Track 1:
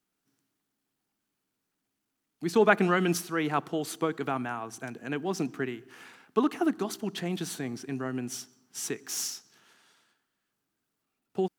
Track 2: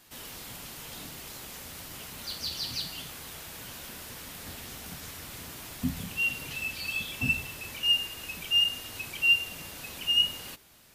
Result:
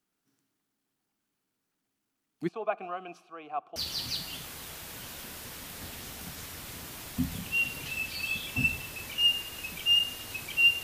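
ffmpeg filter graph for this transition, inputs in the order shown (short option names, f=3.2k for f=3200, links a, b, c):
-filter_complex "[0:a]asplit=3[a][b][c];[a]afade=t=out:st=2.47:d=0.02[d];[b]asplit=3[e][f][g];[e]bandpass=f=730:t=q:w=8,volume=0dB[h];[f]bandpass=f=1.09k:t=q:w=8,volume=-6dB[i];[g]bandpass=f=2.44k:t=q:w=8,volume=-9dB[j];[h][i][j]amix=inputs=3:normalize=0,afade=t=in:st=2.47:d=0.02,afade=t=out:st=3.76:d=0.02[k];[c]afade=t=in:st=3.76:d=0.02[l];[d][k][l]amix=inputs=3:normalize=0,apad=whole_dur=10.83,atrim=end=10.83,atrim=end=3.762[m];[1:a]atrim=start=2.408:end=9.48[n];[m][n]acrossfade=d=0.004:c1=hsin:c2=hsin"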